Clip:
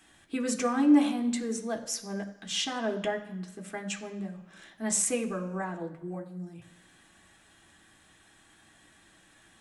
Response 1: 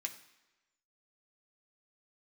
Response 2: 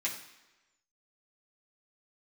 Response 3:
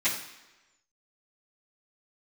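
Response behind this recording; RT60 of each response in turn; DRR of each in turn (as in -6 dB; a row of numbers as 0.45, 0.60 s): 1; 1.1, 1.1, 1.1 s; 2.5, -6.0, -15.5 dB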